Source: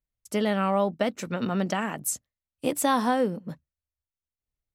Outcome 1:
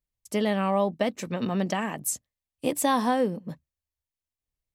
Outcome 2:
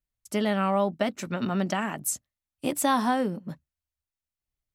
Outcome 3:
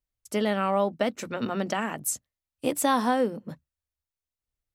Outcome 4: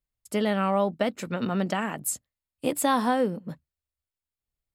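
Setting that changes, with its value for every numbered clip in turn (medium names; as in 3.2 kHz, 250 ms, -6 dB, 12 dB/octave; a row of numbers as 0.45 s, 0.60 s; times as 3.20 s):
band-stop, frequency: 1.4 kHz, 480 Hz, 180 Hz, 5.9 kHz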